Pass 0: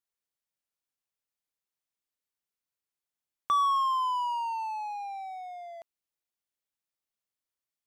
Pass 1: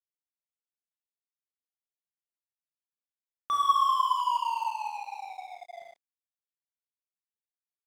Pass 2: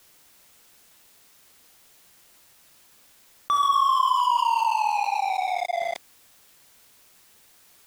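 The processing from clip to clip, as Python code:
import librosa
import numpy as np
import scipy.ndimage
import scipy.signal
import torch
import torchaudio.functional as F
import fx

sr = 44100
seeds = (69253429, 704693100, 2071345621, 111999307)

y1 = fx.dynamic_eq(x, sr, hz=2000.0, q=1.2, threshold_db=-45.0, ratio=4.0, max_db=5)
y1 = fx.rev_schroeder(y1, sr, rt60_s=1.6, comb_ms=25, drr_db=-3.5)
y1 = np.sign(y1) * np.maximum(np.abs(y1) - 10.0 ** (-39.0 / 20.0), 0.0)
y1 = y1 * 10.0 ** (-3.5 / 20.0)
y2 = fx.env_flatten(y1, sr, amount_pct=70)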